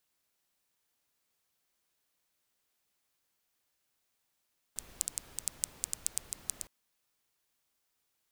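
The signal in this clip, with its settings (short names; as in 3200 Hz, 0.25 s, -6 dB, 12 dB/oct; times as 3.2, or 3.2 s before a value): rain from filtered ticks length 1.91 s, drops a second 7.3, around 8000 Hz, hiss -14.5 dB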